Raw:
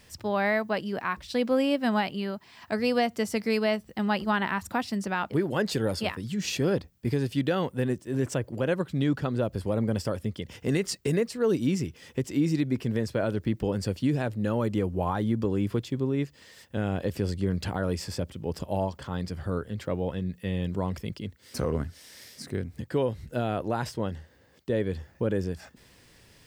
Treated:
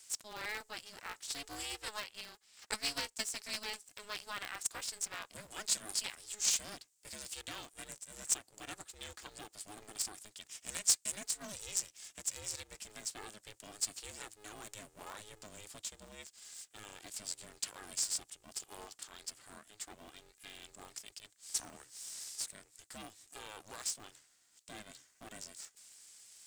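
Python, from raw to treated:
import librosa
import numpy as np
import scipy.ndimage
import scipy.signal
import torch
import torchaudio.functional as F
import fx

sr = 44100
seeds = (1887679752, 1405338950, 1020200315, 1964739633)

y = fx.transient(x, sr, attack_db=9, sustain_db=-7, at=(1.86, 3.33), fade=0.02)
y = fx.bandpass_q(y, sr, hz=7700.0, q=3.5)
y = y * np.sign(np.sin(2.0 * np.pi * 210.0 * np.arange(len(y)) / sr))
y = y * 10.0 ** (11.5 / 20.0)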